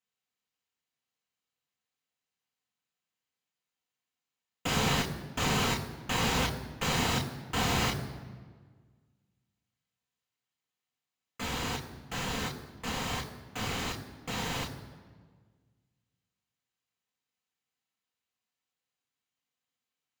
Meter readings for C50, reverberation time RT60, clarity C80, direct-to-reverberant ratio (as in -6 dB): 11.0 dB, 1.6 s, 12.0 dB, 2.5 dB